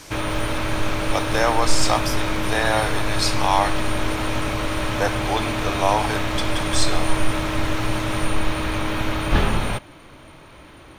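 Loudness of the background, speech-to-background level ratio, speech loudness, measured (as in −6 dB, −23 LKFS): −24.5 LKFS, 0.5 dB, −24.0 LKFS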